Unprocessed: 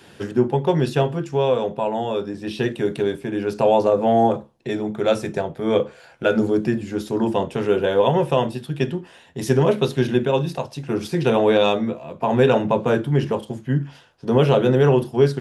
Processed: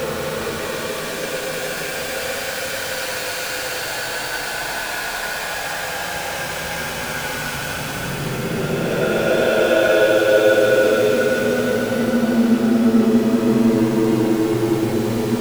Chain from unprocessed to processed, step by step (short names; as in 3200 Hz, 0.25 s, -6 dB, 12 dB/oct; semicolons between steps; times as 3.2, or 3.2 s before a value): zero-crossing step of -18.5 dBFS; frequency shift +14 Hz; Paulstretch 26×, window 0.10 s, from 5.89; gain -1 dB